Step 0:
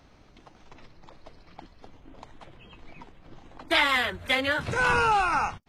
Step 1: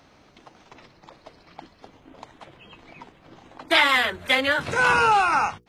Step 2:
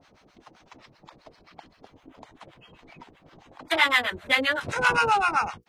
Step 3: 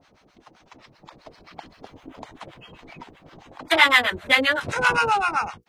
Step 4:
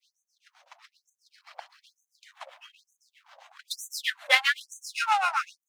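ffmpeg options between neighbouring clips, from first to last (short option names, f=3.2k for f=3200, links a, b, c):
-af "highpass=f=170:p=1,bandreject=f=60:t=h:w=6,bandreject=f=120:t=h:w=6,bandreject=f=180:t=h:w=6,bandreject=f=240:t=h:w=6,bandreject=f=300:t=h:w=6,bandreject=f=360:t=h:w=6,bandreject=f=420:t=h:w=6,bandreject=f=480:t=h:w=6,volume=4.5dB"
-filter_complex "[0:a]acrossover=split=720[a][b];[a]aeval=exprs='val(0)*(1-1/2+1/2*cos(2*PI*7.7*n/s))':c=same[c];[b]aeval=exprs='val(0)*(1-1/2-1/2*cos(2*PI*7.7*n/s))':c=same[d];[c][d]amix=inputs=2:normalize=0,volume=1.5dB"
-af "dynaudnorm=f=240:g=11:m=8.5dB"
-af "aeval=exprs='if(lt(val(0),0),0.447*val(0),val(0))':c=same,afftfilt=real='re*gte(b*sr/1024,490*pow(6100/490,0.5+0.5*sin(2*PI*1.1*pts/sr)))':imag='im*gte(b*sr/1024,490*pow(6100/490,0.5+0.5*sin(2*PI*1.1*pts/sr)))':win_size=1024:overlap=0.75"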